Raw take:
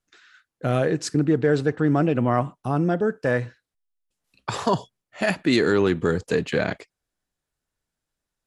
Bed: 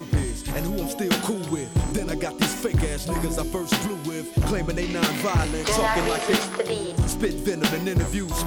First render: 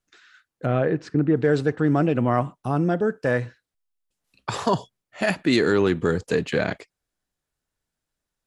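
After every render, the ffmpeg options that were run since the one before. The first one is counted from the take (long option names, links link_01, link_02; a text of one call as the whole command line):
ffmpeg -i in.wav -filter_complex "[0:a]asplit=3[link_01][link_02][link_03];[link_01]afade=type=out:start_time=0.65:duration=0.02[link_04];[link_02]lowpass=2300,afade=type=in:start_time=0.65:duration=0.02,afade=type=out:start_time=1.35:duration=0.02[link_05];[link_03]afade=type=in:start_time=1.35:duration=0.02[link_06];[link_04][link_05][link_06]amix=inputs=3:normalize=0" out.wav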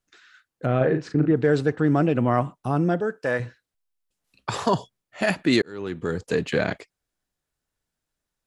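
ffmpeg -i in.wav -filter_complex "[0:a]asettb=1/sr,asplit=3[link_01][link_02][link_03];[link_01]atrim=end=0.774[link_04];[link_02]atrim=start=0.77:end=1.32,asetpts=PTS-STARTPTS,afade=type=in:duration=0.004:curve=qsin,afade=type=out:start_time=0.546:duration=0.004:curve=qsin,asplit=2[link_05][link_06];[link_06]adelay=39,volume=-6dB[link_07];[link_05][link_07]amix=inputs=2:normalize=0,atrim=end_sample=24255[link_08];[link_03]atrim=start=1.316[link_09];[link_04][link_08]acrossfade=duration=0.004:curve1=hsin:curve2=qsin[link_10];[link_10][link_09]acrossfade=duration=0.004:curve1=qsin:curve2=hsin,asettb=1/sr,asplit=3[link_11][link_12][link_13];[link_11]atrim=end=3.004[link_14];[link_12]atrim=start=3:end=3.4,asetpts=PTS-STARTPTS,afade=type=in:duration=0.004:curve=qsin,afade=type=out:start_time=0.396:duration=0.004:curve=qsin,lowshelf=frequency=270:gain=-10.5[link_15];[link_13]atrim=start=3.396[link_16];[link_14][link_15]acrossfade=duration=0.004:curve1=hsin:curve2=qsin[link_17];[link_17][link_16]acrossfade=duration=0.004:curve1=qsin:curve2=hsin,asplit=2[link_18][link_19];[link_18]atrim=end=5.62,asetpts=PTS-STARTPTS,afade=type=out:start_time=5.616:duration=0.004:curve=hsin[link_20];[link_19]atrim=start=5.62,asetpts=PTS-STARTPTS,afade=type=in:duration=0.84[link_21];[link_20][link_21]concat=n=2:v=0:a=1" out.wav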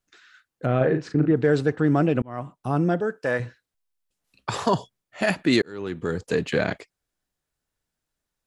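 ffmpeg -i in.wav -filter_complex "[0:a]asplit=2[link_01][link_02];[link_01]atrim=end=2.22,asetpts=PTS-STARTPTS,afade=type=out:start_time=2.216:duration=0.004:curve=hsin[link_03];[link_02]atrim=start=2.22,asetpts=PTS-STARTPTS,afade=type=in:duration=0.53[link_04];[link_03][link_04]concat=n=2:v=0:a=1" out.wav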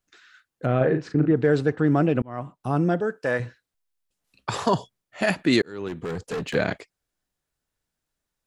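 ffmpeg -i in.wav -filter_complex "[0:a]asettb=1/sr,asplit=3[link_01][link_02][link_03];[link_01]atrim=end=0.724[link_04];[link_02]atrim=start=0.72:end=2.6,asetpts=PTS-STARTPTS,afade=type=in:duration=0.004:curve=qsin,afade=type=out:start_time=1.876:duration=0.004:curve=qsin,highshelf=frequency=5100:gain=-4.5[link_05];[link_03]atrim=start=2.596[link_06];[link_04][link_05]acrossfade=duration=0.004:curve1=hsin:curve2=qsin[link_07];[link_07][link_06]acrossfade=duration=0.004:curve1=qsin:curve2=hsin,asettb=1/sr,asplit=3[link_08][link_09][link_10];[link_08]atrim=end=5.884[link_11];[link_09]atrim=start=5.88:end=6.55,asetpts=PTS-STARTPTS,afade=type=in:duration=0.004:curve=qsin,afade=type=out:start_time=0.666:duration=0.004:curve=qsin,asoftclip=type=hard:threshold=-26dB[link_12];[link_10]atrim=start=6.546[link_13];[link_11][link_12]acrossfade=duration=0.004:curve1=hsin:curve2=qsin[link_14];[link_14][link_13]acrossfade=duration=0.004:curve1=qsin:curve2=hsin" out.wav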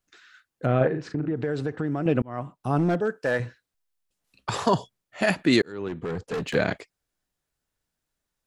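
ffmpeg -i in.wav -filter_complex "[0:a]asettb=1/sr,asplit=3[link_01][link_02][link_03];[link_01]atrim=end=0.874[link_04];[link_02]atrim=start=0.87:end=2.06,asetpts=PTS-STARTPTS,afade=type=in:duration=0.004:curve=qsin,afade=type=out:start_time=1.186:duration=0.004:curve=qsin,acompressor=threshold=-24dB:ratio=4:attack=3.2:release=140:knee=1:detection=peak[link_05];[link_03]atrim=start=2.056[link_06];[link_04][link_05]acrossfade=duration=0.004:curve1=hsin:curve2=qsin[link_07];[link_07][link_06]acrossfade=duration=0.004:curve1=qsin:curve2=hsin,asettb=1/sr,asplit=3[link_08][link_09][link_10];[link_08]atrim=end=2.784[link_11];[link_09]atrim=start=2.78:end=4.51,asetpts=PTS-STARTPTS,afade=type=in:duration=0.004:curve=qsin,afade=type=out:start_time=1.726:duration=0.004:curve=qsin,asoftclip=type=hard:threshold=-17dB[link_12];[link_10]atrim=start=4.506[link_13];[link_11][link_12]acrossfade=duration=0.004:curve1=hsin:curve2=qsin[link_14];[link_14][link_13]acrossfade=duration=0.004:curve1=qsin:curve2=hsin,asettb=1/sr,asplit=3[link_15][link_16][link_17];[link_15]atrim=end=5.724[link_18];[link_16]atrim=start=5.72:end=6.34,asetpts=PTS-STARTPTS,afade=type=in:duration=0.004:curve=qsin,afade=type=out:start_time=0.616:duration=0.004:curve=qsin,highshelf=frequency=5000:gain=-11.5[link_19];[link_17]atrim=start=6.336[link_20];[link_18][link_19]acrossfade=duration=0.004:curve1=hsin:curve2=qsin[link_21];[link_21][link_20]acrossfade=duration=0.004:curve1=qsin:curve2=hsin" out.wav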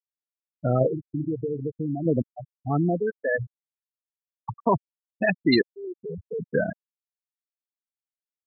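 ffmpeg -i in.wav -af "afftfilt=real='re*gte(hypot(re,im),0.2)':imag='im*gte(hypot(re,im),0.2)':win_size=1024:overlap=0.75,highshelf=frequency=2900:gain=11" out.wav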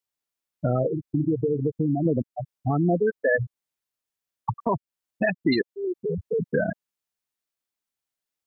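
ffmpeg -i in.wav -filter_complex "[0:a]asplit=2[link_01][link_02];[link_02]acompressor=threshold=-31dB:ratio=6,volume=3dB[link_03];[link_01][link_03]amix=inputs=2:normalize=0,alimiter=limit=-13dB:level=0:latency=1:release=196" out.wav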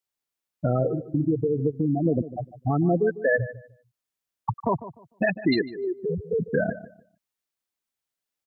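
ffmpeg -i in.wav -filter_complex "[0:a]asplit=2[link_01][link_02];[link_02]adelay=150,lowpass=frequency=1800:poles=1,volume=-14.5dB,asplit=2[link_03][link_04];[link_04]adelay=150,lowpass=frequency=1800:poles=1,volume=0.24,asplit=2[link_05][link_06];[link_06]adelay=150,lowpass=frequency=1800:poles=1,volume=0.24[link_07];[link_01][link_03][link_05][link_07]amix=inputs=4:normalize=0" out.wav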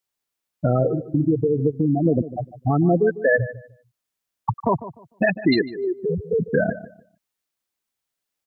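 ffmpeg -i in.wav -af "volume=4dB" out.wav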